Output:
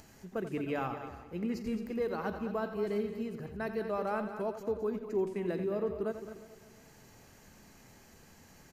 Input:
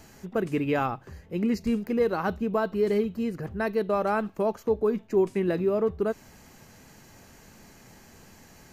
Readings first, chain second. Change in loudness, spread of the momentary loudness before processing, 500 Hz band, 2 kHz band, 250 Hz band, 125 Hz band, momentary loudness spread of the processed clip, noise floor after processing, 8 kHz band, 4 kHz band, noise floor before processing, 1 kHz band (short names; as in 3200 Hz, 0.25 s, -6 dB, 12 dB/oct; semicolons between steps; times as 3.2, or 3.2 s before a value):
-8.5 dB, 6 LU, -8.5 dB, -8.0 dB, -8.5 dB, -8.5 dB, 7 LU, -58 dBFS, n/a, -8.0 dB, -53 dBFS, -8.0 dB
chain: regenerating reverse delay 0.177 s, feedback 50%, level -14 dB; upward compressor, threshold -43 dBFS; loudspeakers at several distances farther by 30 m -11 dB, 74 m -11 dB; gain -9 dB